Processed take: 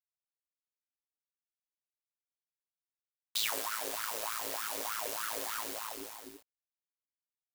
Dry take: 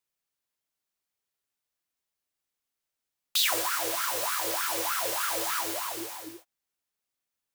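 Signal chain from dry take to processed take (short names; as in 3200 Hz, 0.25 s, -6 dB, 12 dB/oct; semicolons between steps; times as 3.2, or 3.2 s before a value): companded quantiser 4-bit; ring modulator 55 Hz; gain -5 dB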